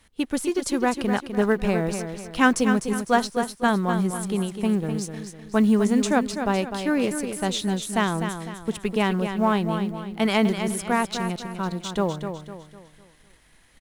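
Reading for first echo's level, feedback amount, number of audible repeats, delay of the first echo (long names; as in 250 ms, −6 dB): −8.0 dB, 40%, 4, 252 ms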